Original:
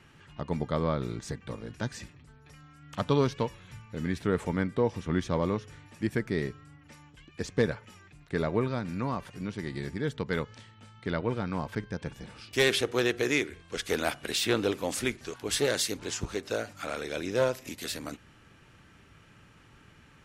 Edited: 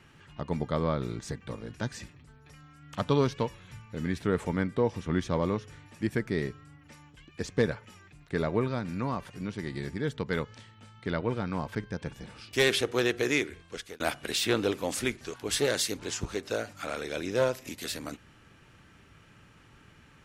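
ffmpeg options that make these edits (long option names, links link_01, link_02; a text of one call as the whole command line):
ffmpeg -i in.wav -filter_complex "[0:a]asplit=2[link_01][link_02];[link_01]atrim=end=14,asetpts=PTS-STARTPTS,afade=type=out:start_time=13.59:duration=0.41[link_03];[link_02]atrim=start=14,asetpts=PTS-STARTPTS,afade=type=in:duration=0.004:curve=hsin[link_04];[link_03][link_04]concat=n=2:v=0:a=1" out.wav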